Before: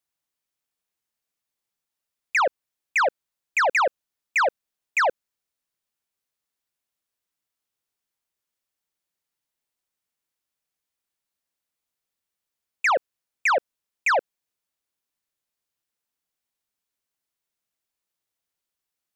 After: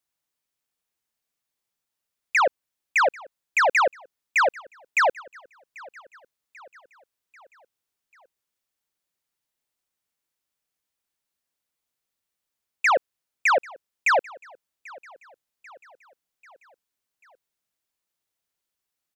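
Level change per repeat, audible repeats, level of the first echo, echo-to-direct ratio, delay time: -5.0 dB, 3, -23.0 dB, -21.5 dB, 790 ms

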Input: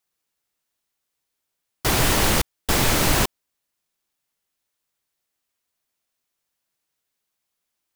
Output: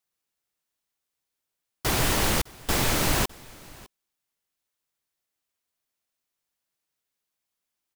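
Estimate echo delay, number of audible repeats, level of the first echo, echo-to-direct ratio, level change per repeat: 607 ms, 1, -23.0 dB, -23.0 dB, no regular repeats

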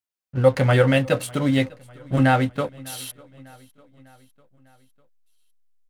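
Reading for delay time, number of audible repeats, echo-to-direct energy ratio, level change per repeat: 600 ms, 3, -22.5 dB, -5.0 dB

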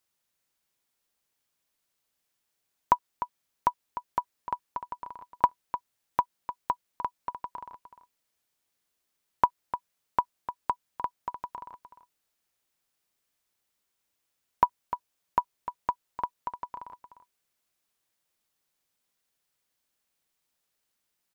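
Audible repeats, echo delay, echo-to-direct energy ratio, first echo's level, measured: 1, 301 ms, -11.0 dB, -11.0 dB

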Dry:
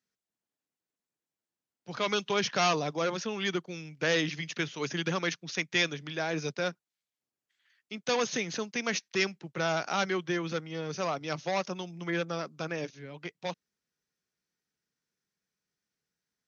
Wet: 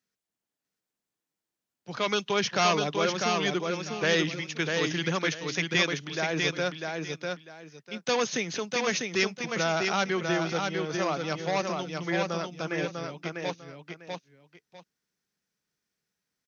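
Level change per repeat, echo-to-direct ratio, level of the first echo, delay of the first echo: -13.0 dB, -4.0 dB, -4.0 dB, 648 ms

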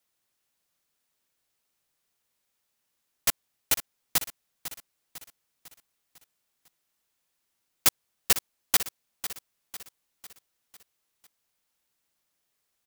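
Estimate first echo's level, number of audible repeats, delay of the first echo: -12.5 dB, 4, 500 ms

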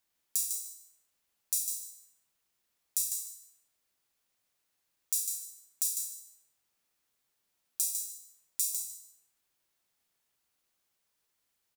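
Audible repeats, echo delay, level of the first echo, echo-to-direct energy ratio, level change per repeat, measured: 2, 151 ms, -6.0 dB, -6.0 dB, -15.0 dB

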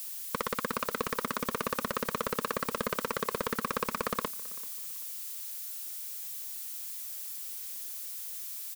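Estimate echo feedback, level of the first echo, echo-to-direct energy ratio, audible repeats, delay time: 31%, -22.0 dB, -21.5 dB, 2, 387 ms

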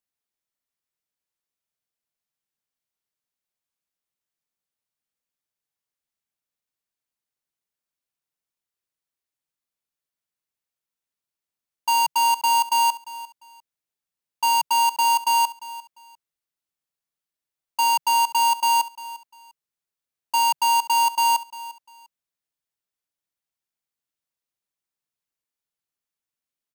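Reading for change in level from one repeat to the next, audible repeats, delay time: -12.5 dB, 2, 349 ms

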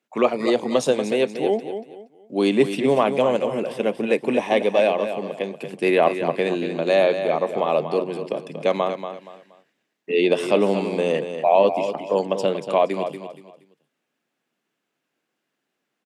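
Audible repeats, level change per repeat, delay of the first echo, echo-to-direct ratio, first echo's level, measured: 3, -11.0 dB, 236 ms, -8.5 dB, -9.0 dB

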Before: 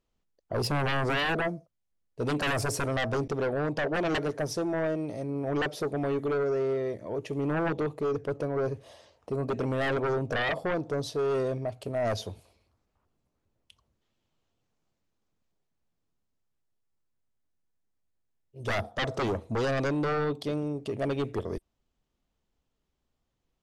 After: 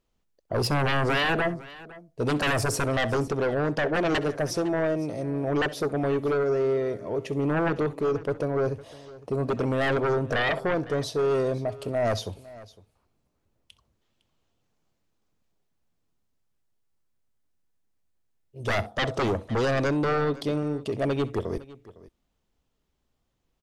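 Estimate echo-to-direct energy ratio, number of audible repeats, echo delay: -16.5 dB, 2, 65 ms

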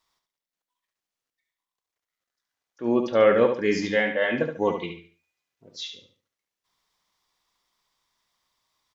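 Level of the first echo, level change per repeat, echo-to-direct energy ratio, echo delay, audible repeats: -7.0 dB, -10.0 dB, -6.5 dB, 71 ms, 3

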